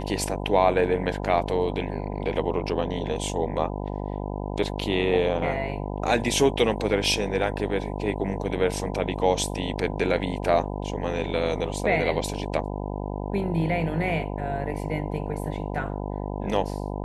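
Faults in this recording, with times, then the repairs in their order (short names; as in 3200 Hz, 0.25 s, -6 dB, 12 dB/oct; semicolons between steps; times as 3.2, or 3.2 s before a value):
buzz 50 Hz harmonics 20 -31 dBFS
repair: de-hum 50 Hz, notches 20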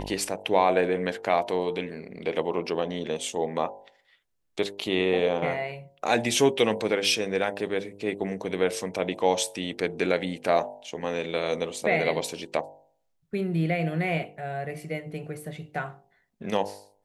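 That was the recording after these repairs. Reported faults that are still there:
none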